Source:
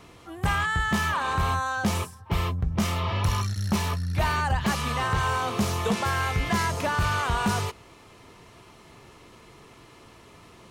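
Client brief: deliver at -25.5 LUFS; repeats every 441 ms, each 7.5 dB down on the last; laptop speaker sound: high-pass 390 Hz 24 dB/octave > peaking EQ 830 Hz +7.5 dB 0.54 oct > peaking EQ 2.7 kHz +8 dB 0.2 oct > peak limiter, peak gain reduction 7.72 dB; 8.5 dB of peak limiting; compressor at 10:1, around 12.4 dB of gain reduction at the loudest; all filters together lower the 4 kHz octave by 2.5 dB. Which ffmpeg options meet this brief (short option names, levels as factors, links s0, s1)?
-af "equalizer=f=4000:t=o:g=-7,acompressor=threshold=0.0224:ratio=10,alimiter=level_in=2:limit=0.0631:level=0:latency=1,volume=0.501,highpass=f=390:w=0.5412,highpass=f=390:w=1.3066,equalizer=f=830:t=o:w=0.54:g=7.5,equalizer=f=2700:t=o:w=0.2:g=8,aecho=1:1:441|882|1323|1764|2205:0.422|0.177|0.0744|0.0312|0.0131,volume=6.68,alimiter=limit=0.158:level=0:latency=1"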